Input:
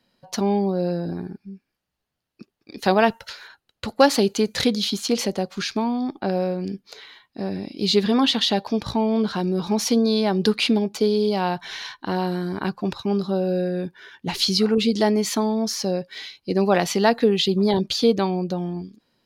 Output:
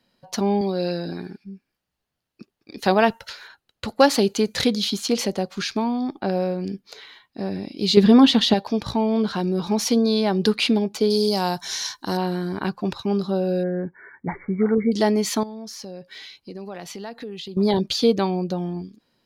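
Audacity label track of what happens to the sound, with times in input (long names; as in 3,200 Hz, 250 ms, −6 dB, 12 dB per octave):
0.610000	1.440000	meter weighting curve D
7.970000	8.540000	low-shelf EQ 480 Hz +9.5 dB
11.100000	12.170000	high shelf with overshoot 4,200 Hz +13.5 dB, Q 1.5
13.630000	14.920000	linear-phase brick-wall low-pass 2,300 Hz
15.430000	17.570000	downward compressor 3 to 1, threshold −37 dBFS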